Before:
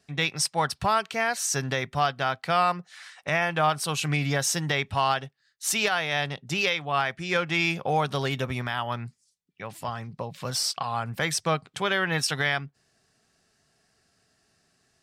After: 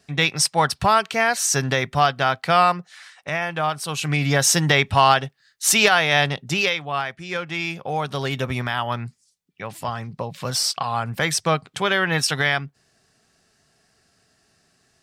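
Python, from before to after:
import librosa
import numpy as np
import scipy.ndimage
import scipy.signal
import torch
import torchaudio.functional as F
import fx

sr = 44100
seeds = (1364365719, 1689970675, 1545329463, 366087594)

y = fx.gain(x, sr, db=fx.line((2.64, 6.5), (3.15, 0.0), (3.84, 0.0), (4.51, 9.0), (6.25, 9.0), (7.17, -2.0), (7.82, -2.0), (8.53, 5.0)))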